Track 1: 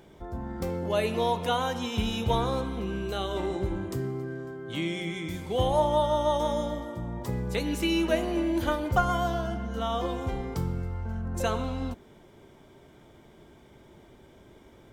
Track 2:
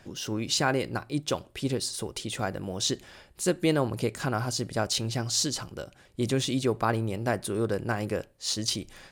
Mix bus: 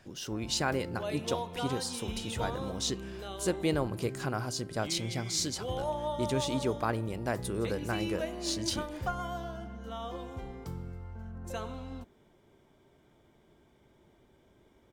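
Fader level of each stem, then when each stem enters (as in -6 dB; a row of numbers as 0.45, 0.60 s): -10.0, -5.0 dB; 0.10, 0.00 s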